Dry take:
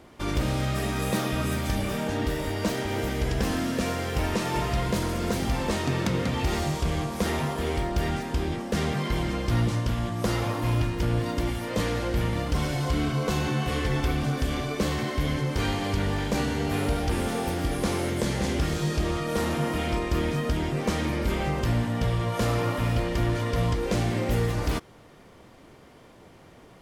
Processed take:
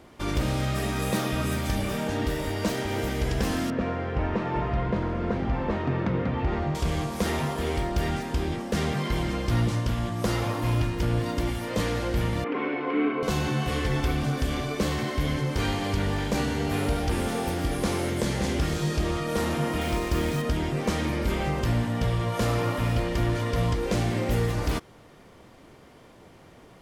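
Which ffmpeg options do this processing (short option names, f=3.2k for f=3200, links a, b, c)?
-filter_complex "[0:a]asettb=1/sr,asplit=3[a][b][c];[a]atrim=end=3.704[d];[b]atrim=start=3.7:end=6.75,asetpts=PTS-STARTPTS,afade=t=in:d=0.004:c=qsin,afade=t=out:st=3.046:d=0.004:c=qsin,lowpass=1.8k[e];[c]atrim=start=6.746[f];[d][e]acrossfade=d=0.004:c1=hsin:c2=qsin[g];[g][f]acrossfade=d=0.004:c1=qsin:c2=hsin,asettb=1/sr,asplit=3[h][i][j];[h]atrim=end=12.444[k];[i]atrim=start=12.44:end=13.23,asetpts=PTS-STARTPTS,afade=t=in:d=0.004:c=qsin,afade=t=out:st=0.786:d=0.004:c=qsin,highpass=f=260:w=0.5412,highpass=f=260:w=1.3066,equalizer=f=270:t=q:w=4:g=8,equalizer=f=430:t=q:w=4:g=9,equalizer=f=620:t=q:w=4:g=-5,equalizer=f=1.1k:t=q:w=4:g=4,equalizer=f=2.3k:t=q:w=4:g=7,lowpass=f=2.5k:w=0.5412,lowpass=f=2.5k:w=1.3066[l];[j]atrim=start=13.226[m];[k][l]acrossfade=d=0.004:c1=hsin:c2=qsin[n];[n][m]acrossfade=d=0.004:c1=qsin:c2=hsin,asettb=1/sr,asplit=3[o][p][q];[o]atrim=end=19.814[r];[p]atrim=start=19.81:end=20.42,asetpts=PTS-STARTPTS,afade=t=in:d=0.004:c=qsin,afade=t=out:st=0.606:d=0.004:c=qsin,acrusher=bits=5:mix=0:aa=0.5[s];[q]atrim=start=20.416[t];[r][s]acrossfade=d=0.004:c1=hsin:c2=qsin[u];[u][t]acrossfade=d=0.004:c1=qsin:c2=hsin"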